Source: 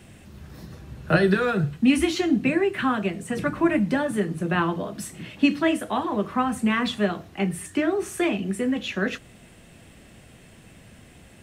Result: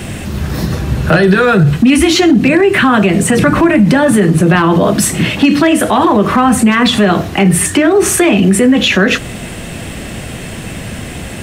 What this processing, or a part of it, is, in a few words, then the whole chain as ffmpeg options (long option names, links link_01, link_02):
loud club master: -af "acompressor=threshold=-24dB:ratio=2.5,asoftclip=type=hard:threshold=-18dB,alimiter=level_in=26dB:limit=-1dB:release=50:level=0:latency=1,volume=-1dB"